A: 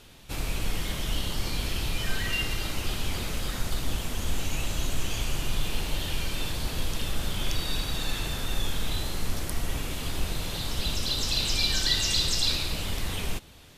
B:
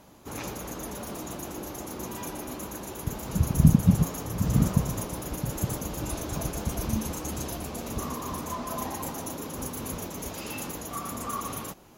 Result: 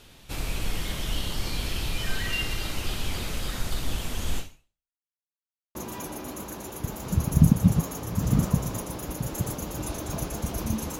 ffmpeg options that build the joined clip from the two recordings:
ffmpeg -i cue0.wav -i cue1.wav -filter_complex "[0:a]apad=whole_dur=10.99,atrim=end=10.99,asplit=2[link_01][link_02];[link_01]atrim=end=4.99,asetpts=PTS-STARTPTS,afade=type=out:start_time=4.38:duration=0.61:curve=exp[link_03];[link_02]atrim=start=4.99:end=5.75,asetpts=PTS-STARTPTS,volume=0[link_04];[1:a]atrim=start=1.98:end=7.22,asetpts=PTS-STARTPTS,afade=type=in:duration=0.004:curve=hsin[link_05];[link_03][link_04][link_05]concat=n=3:v=0:a=1" out.wav

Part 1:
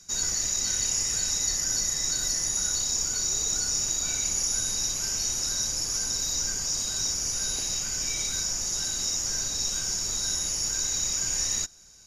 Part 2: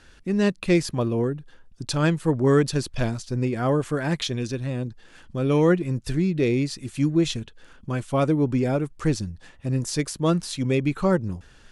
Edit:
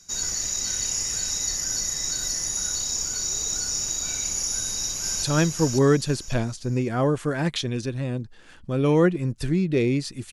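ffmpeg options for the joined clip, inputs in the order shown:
ffmpeg -i cue0.wav -i cue1.wav -filter_complex "[0:a]apad=whole_dur=10.32,atrim=end=10.32,atrim=end=5.232[link_01];[1:a]atrim=start=1.888:end=6.98[link_02];[link_01][link_02]acrossfade=duration=0.004:curve1=hsin:curve2=hsin,asplit=2[link_03][link_04];[link_04]afade=type=in:start_time=4.5:duration=0.01,afade=type=out:start_time=5.23:duration=0.01,aecho=0:1:550|1100|1650|2200:0.668344|0.200503|0.060151|0.0180453[link_05];[link_03][link_05]amix=inputs=2:normalize=0" out.wav

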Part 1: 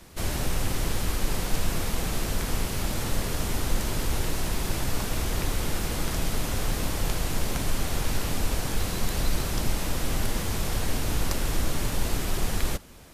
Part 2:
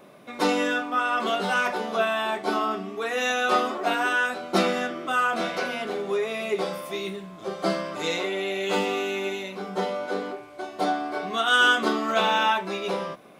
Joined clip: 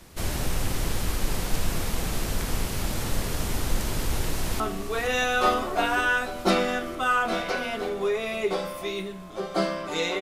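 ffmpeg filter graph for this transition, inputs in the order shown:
ffmpeg -i cue0.wav -i cue1.wav -filter_complex "[0:a]apad=whole_dur=10.21,atrim=end=10.21,atrim=end=4.602[link_01];[1:a]atrim=start=2.678:end=8.29[link_02];[link_01][link_02]acrossfade=duration=0.004:curve1=hsin:curve2=hsin,asplit=2[link_03][link_04];[link_04]afade=type=in:start_time=4.01:duration=0.01,afade=type=out:start_time=4.6:duration=0.01,aecho=0:1:470|940|1410|1880|2350|2820|3290|3760|4230|4700|5170|5640:0.354813|0.283851|0.227081|0.181664|0.145332|0.116265|0.0930122|0.0744098|0.0595278|0.0476222|0.0380978|0.0304782[link_05];[link_03][link_05]amix=inputs=2:normalize=0" out.wav

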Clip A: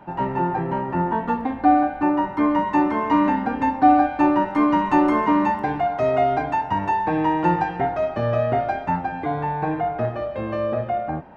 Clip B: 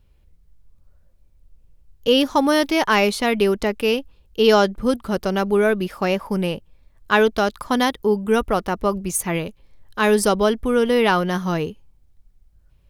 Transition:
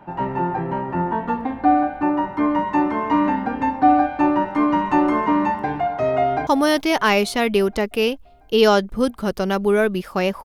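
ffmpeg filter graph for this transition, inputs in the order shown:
ffmpeg -i cue0.wav -i cue1.wav -filter_complex "[0:a]apad=whole_dur=10.44,atrim=end=10.44,atrim=end=6.472[link_01];[1:a]atrim=start=2.328:end=6.3[link_02];[link_01][link_02]acrossfade=duration=0.004:curve1=hsin:curve2=hsin,asplit=2[link_03][link_04];[link_04]afade=type=in:start_time=6.21:duration=0.01,afade=type=out:start_time=6.47:duration=0.01,aecho=0:1:340|680|1020|1360|1700|2040|2380|2720:0.125893|0.0881248|0.0616873|0.0431811|0.0302268|0.0211588|0.0148111|0.0103678[link_05];[link_03][link_05]amix=inputs=2:normalize=0" out.wav

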